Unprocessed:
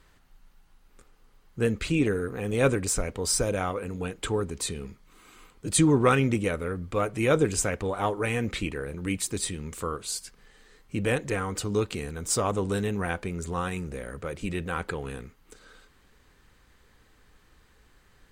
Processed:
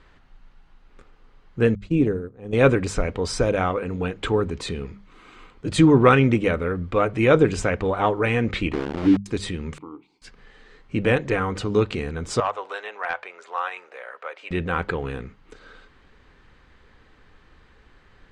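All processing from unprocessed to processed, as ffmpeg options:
ffmpeg -i in.wav -filter_complex "[0:a]asettb=1/sr,asplit=3[link_01][link_02][link_03];[link_01]atrim=end=1.754[link_04];[link_02]atrim=start=1.75:end=2.53,asetpts=PTS-STARTPTS,afade=type=in:duration=0.004:curve=qsin,afade=type=out:start_time=0.776:duration=0.004:curve=qsin,agate=range=-33dB:threshold=-24dB:ratio=3:release=100:detection=peak,lowpass=9000,equalizer=frequency=2100:width_type=o:width=2.5:gain=-12[link_05];[link_03]atrim=start=2.526[link_06];[link_04][link_05]acrossfade=duration=0.004:curve1=hsin:curve2=qsin[link_07];[link_07][link_06]acrossfade=duration=0.004:curve1=qsin:curve2=hsin,asettb=1/sr,asplit=3[link_08][link_09][link_10];[link_08]atrim=end=8.734[link_11];[link_09]atrim=start=8.73:end=9.26,asetpts=PTS-STARTPTS,afade=type=in:duration=0.004:curve=qsin,afade=type=out:start_time=0.526:duration=0.004:curve=qsin,lowpass=frequency=320:width_type=q:width=3.2,aeval=exprs='val(0)*gte(abs(val(0)),0.0299)':channel_layout=same[link_12];[link_10]atrim=start=9.256[link_13];[link_11][link_12]acrossfade=duration=0.004:curve1=hsin:curve2=qsin[link_14];[link_14][link_13]acrossfade=duration=0.004:curve1=qsin:curve2=hsin,asettb=1/sr,asplit=3[link_15][link_16][link_17];[link_15]atrim=end=9.784[link_18];[link_16]atrim=start=9.78:end=10.22,asetpts=PTS-STARTPTS,afade=type=in:duration=0.004:curve=qsin,afade=type=out:start_time=0.436:duration=0.004:curve=qsin,deesser=1,asplit=3[link_19][link_20][link_21];[link_19]bandpass=frequency=300:width_type=q:width=8,volume=0dB[link_22];[link_20]bandpass=frequency=870:width_type=q:width=8,volume=-6dB[link_23];[link_21]bandpass=frequency=2240:width_type=q:width=8,volume=-9dB[link_24];[link_22][link_23][link_24]amix=inputs=3:normalize=0[link_25];[link_17]atrim=start=10.216[link_26];[link_18][link_25]acrossfade=duration=0.004:curve1=hsin:curve2=qsin[link_27];[link_27][link_26]acrossfade=duration=0.004:curve1=qsin:curve2=hsin,asettb=1/sr,asplit=3[link_28][link_29][link_30];[link_28]atrim=end=12.404[link_31];[link_29]atrim=start=12.4:end=14.51,asetpts=PTS-STARTPTS,afade=type=in:duration=0.004:curve=qsin,afade=type=out:start_time=2.106:duration=0.004:curve=qsin,highpass=frequency=650:width=0.5412,highpass=frequency=650:width=1.3066,aemphasis=mode=reproduction:type=50kf,asoftclip=type=hard:threshold=-21.5dB[link_32];[link_30]atrim=start=14.506[link_33];[link_31][link_32]acrossfade=duration=0.004:curve1=hsin:curve2=qsin[link_34];[link_34][link_33]acrossfade=duration=0.004:curve1=qsin:curve2=hsin,lowpass=3500,bandreject=frequency=50:width_type=h:width=6,bandreject=frequency=100:width_type=h:width=6,bandreject=frequency=150:width_type=h:width=6,bandreject=frequency=200:width_type=h:width=6,volume=6.5dB" out.wav

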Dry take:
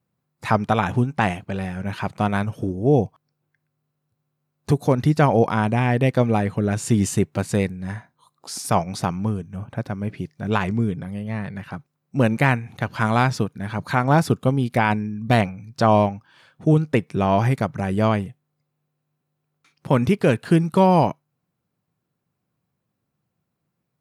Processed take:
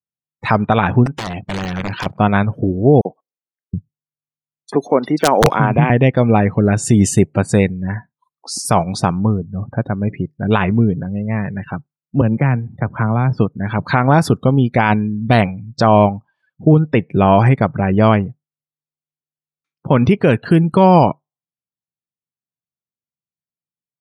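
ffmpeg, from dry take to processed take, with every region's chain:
ffmpeg -i in.wav -filter_complex "[0:a]asettb=1/sr,asplit=3[link_01][link_02][link_03];[link_01]atrim=end=1.064[link_04];[link_02]atrim=start=1.06:end=2.06,asetpts=PTS-STARTPTS,afade=type=in:duration=0.004:curve=qsin,afade=type=out:start_time=0.996:duration=0.004:curve=qsin,acompressor=threshold=-25dB:ratio=12:attack=3.2:release=140:knee=1:detection=peak,aeval=exprs='(mod(15*val(0)+1,2)-1)/15':channel_layout=same[link_05];[link_03]atrim=start=2.056[link_06];[link_04][link_05]acrossfade=duration=0.004:curve1=hsin:curve2=qsin[link_07];[link_07][link_06]acrossfade=duration=0.004:curve1=qsin:curve2=hsin,asettb=1/sr,asplit=3[link_08][link_09][link_10];[link_08]atrim=end=3.014[link_11];[link_09]atrim=start=3.01:end=5.9,asetpts=PTS-STARTPTS,afade=type=in:duration=0.004:curve=qsin,afade=type=out:start_time=2.886:duration=0.004:curve=qsin,acrossover=split=230|3000[link_12][link_13][link_14];[link_13]adelay=40[link_15];[link_12]adelay=720[link_16];[link_16][link_15][link_14]amix=inputs=3:normalize=0,atrim=end_sample=127449,aeval=exprs='(mod(2*val(0)+1,2)-1)/2':channel_layout=same,highshelf=frequency=8700:gain=-2[link_17];[link_10]atrim=start=5.896[link_18];[link_11][link_17]acrossfade=duration=0.004:curve1=hsin:curve2=qsin[link_19];[link_19][link_18]acrossfade=duration=0.004:curve1=qsin:curve2=hsin,asettb=1/sr,asplit=3[link_20][link_21][link_22];[link_20]atrim=end=12.214[link_23];[link_21]atrim=start=12.21:end=13.38,asetpts=PTS-STARTPTS,afade=type=in:duration=0.004:curve=qsin,afade=type=out:start_time=1.166:duration=0.004:curve=qsin,equalizer=frequency=5800:width_type=o:width=2.6:gain=-14.5,acrossover=split=160|3000[link_24][link_25][link_26];[link_25]acompressor=threshold=-23dB:ratio=6:attack=3.2:release=140:knee=2.83:detection=peak[link_27];[link_24][link_27][link_26]amix=inputs=3:normalize=0[link_28];[link_22]atrim=start=13.376[link_29];[link_23][link_28]acrossfade=duration=0.004:curve1=hsin:curve2=qsin[link_30];[link_30][link_29]acrossfade=duration=0.004:curve1=qsin:curve2=hsin,afftdn=noise_reduction=34:noise_floor=-39,alimiter=level_in=9dB:limit=-1dB:release=50:level=0:latency=1,volume=-1dB" out.wav

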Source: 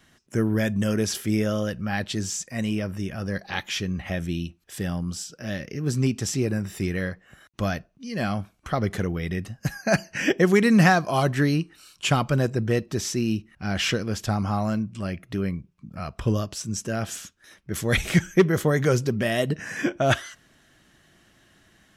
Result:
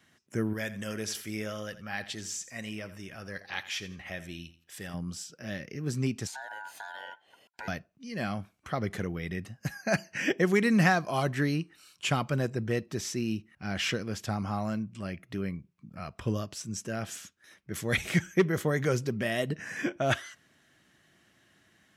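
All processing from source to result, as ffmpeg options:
ffmpeg -i in.wav -filter_complex "[0:a]asettb=1/sr,asplit=3[link_01][link_02][link_03];[link_01]atrim=end=0.534[link_04];[link_02]atrim=start=0.53:end=4.94,asetpts=PTS-STARTPTS,afade=type=in:duration=0.004:curve=qsin,afade=type=out:start_time=4.406:duration=0.004:curve=qsin,equalizer=frequency=170:width=0.37:gain=-8.5,aecho=1:1:84|168|252:0.178|0.0533|0.016,atrim=end_sample=194481[link_05];[link_03]atrim=start=4.936[link_06];[link_04][link_05]acrossfade=duration=0.004:curve1=hsin:curve2=qsin[link_07];[link_07][link_06]acrossfade=duration=0.004:curve1=qsin:curve2=hsin,asettb=1/sr,asplit=3[link_08][link_09][link_10];[link_08]atrim=end=6.274[link_11];[link_09]atrim=start=6.27:end=7.68,asetpts=PTS-STARTPTS,afade=type=in:duration=0.004:curve=qsin,afade=type=out:start_time=1.406:duration=0.004:curve=qsin,afreqshift=140,acompressor=threshold=-28dB:ratio=12:attack=3.2:release=140:knee=1:detection=peak,aeval=exprs='val(0)*sin(2*PI*1200*n/s)':channel_layout=same[link_12];[link_10]atrim=start=7.676[link_13];[link_11][link_12]acrossfade=duration=0.004:curve1=hsin:curve2=qsin[link_14];[link_14][link_13]acrossfade=duration=0.004:curve1=qsin:curve2=hsin,highpass=87,equalizer=frequency=2100:width_type=o:width=0.64:gain=3,volume=-6.5dB" out.wav

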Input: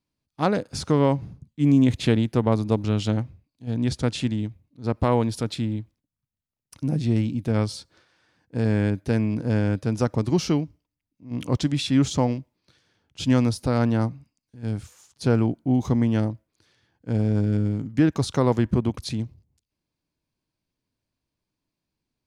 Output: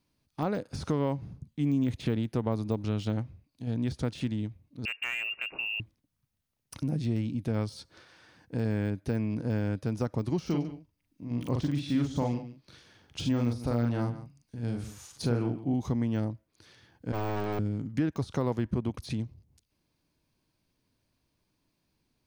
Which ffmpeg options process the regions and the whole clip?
ffmpeg -i in.wav -filter_complex "[0:a]asettb=1/sr,asplit=3[link_01][link_02][link_03];[link_01]atrim=end=4.854[link_04];[link_02]atrim=start=4.85:end=5.8,asetpts=PTS-STARTPTS,afade=type=in:duration=0.004:curve=qsin,afade=type=out:start_time=0.946:duration=0.004:curve=qsin,lowpass=frequency=2500:width_type=q:width=0.5098,lowpass=frequency=2500:width_type=q:width=0.6013,lowpass=frequency=2500:width_type=q:width=0.9,lowpass=frequency=2500:width_type=q:width=2.563,afreqshift=-2900,volume=17dB,asoftclip=hard,volume=-17dB[link_05];[link_03]atrim=start=5.796[link_06];[link_04][link_05]acrossfade=duration=0.004:curve1=hsin:curve2=qsin[link_07];[link_07][link_06]acrossfade=duration=0.004:curve1=qsin:curve2=hsin,asettb=1/sr,asplit=3[link_08][link_09][link_10];[link_08]atrim=end=10.464[link_11];[link_09]atrim=start=10.46:end=15.74,asetpts=PTS-STARTPTS,afade=type=in:duration=0.004:curve=qsin,afade=type=out:start_time=5.276:duration=0.004:curve=qsin,asplit=2[link_12][link_13];[link_13]adelay=42,volume=-4dB[link_14];[link_12][link_14]amix=inputs=2:normalize=0,atrim=end_sample=232848,aecho=1:1:143:0.141,atrim=end_sample=232848[link_15];[link_10]atrim=start=15.736[link_16];[link_11][link_15]acrossfade=duration=0.004:curve1=hsin:curve2=qsin[link_17];[link_17][link_16]acrossfade=duration=0.004:curve1=qsin:curve2=hsin,asettb=1/sr,asplit=3[link_18][link_19][link_20];[link_18]atrim=end=17.124[link_21];[link_19]atrim=start=17.12:end=17.59,asetpts=PTS-STARTPTS,afade=type=in:duration=0.004:curve=qsin,afade=type=out:start_time=0.466:duration=0.004:curve=qsin,agate=range=-33dB:threshold=-17dB:ratio=3:release=100:detection=peak,aeval=exprs='abs(val(0))':channel_layout=same,asplit=2[link_22][link_23];[link_23]highpass=frequency=720:poles=1,volume=27dB,asoftclip=type=tanh:threshold=-18dB[link_24];[link_22][link_24]amix=inputs=2:normalize=0,lowpass=frequency=3700:poles=1,volume=-6dB[link_25];[link_20]atrim=start=17.586[link_26];[link_21][link_25]acrossfade=duration=0.004:curve1=hsin:curve2=qsin[link_27];[link_27][link_26]acrossfade=duration=0.004:curve1=qsin:curve2=hsin,deesser=0.95,bandreject=frequency=7400:width=12,acompressor=threshold=-46dB:ratio=2,volume=7dB" out.wav

